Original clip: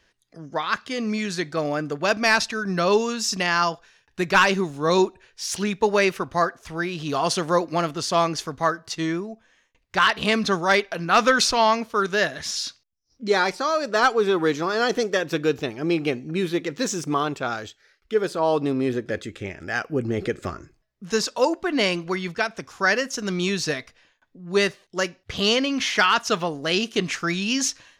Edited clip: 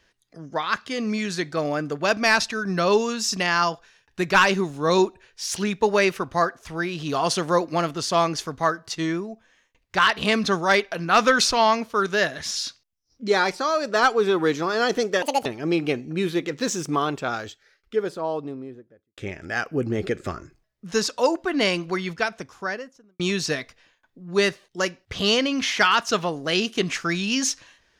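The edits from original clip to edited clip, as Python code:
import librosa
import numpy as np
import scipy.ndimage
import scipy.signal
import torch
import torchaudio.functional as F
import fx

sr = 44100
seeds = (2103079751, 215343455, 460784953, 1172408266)

y = fx.studio_fade_out(x, sr, start_s=17.64, length_s=1.72)
y = fx.studio_fade_out(y, sr, start_s=22.37, length_s=1.01)
y = fx.edit(y, sr, fx.speed_span(start_s=15.22, length_s=0.42, speed=1.78), tone=tone)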